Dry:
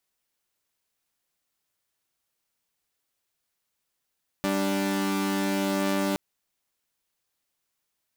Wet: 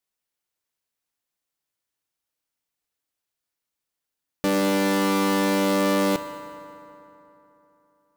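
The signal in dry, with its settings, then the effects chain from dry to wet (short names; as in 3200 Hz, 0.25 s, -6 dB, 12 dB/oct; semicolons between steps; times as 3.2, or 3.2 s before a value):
chord G3/D4 saw, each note -24.5 dBFS 1.72 s
sample leveller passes 3; FDN reverb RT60 3.3 s, high-frequency decay 0.55×, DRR 8 dB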